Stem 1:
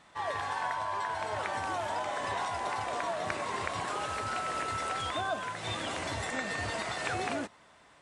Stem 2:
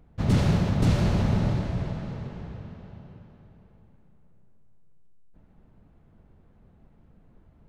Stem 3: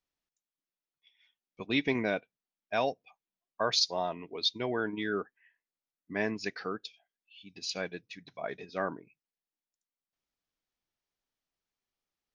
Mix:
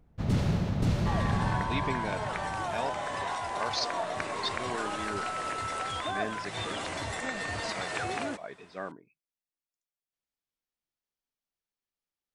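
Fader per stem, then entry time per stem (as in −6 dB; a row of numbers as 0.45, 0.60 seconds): 0.0, −5.5, −5.5 decibels; 0.90, 0.00, 0.00 seconds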